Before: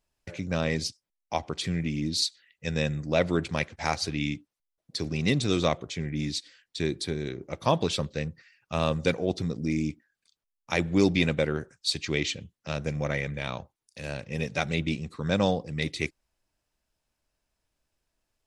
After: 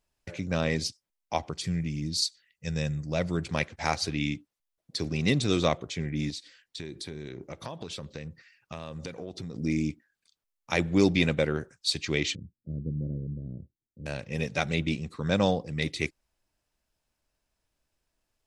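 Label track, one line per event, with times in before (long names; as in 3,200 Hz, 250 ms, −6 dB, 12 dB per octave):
1.500000	3.470000	gain on a spectral selection 210–4,300 Hz −6 dB
6.300000	9.540000	downward compressor 8 to 1, threshold −34 dBFS
12.350000	14.060000	inverse Chebyshev low-pass filter stop band from 890 Hz, stop band 50 dB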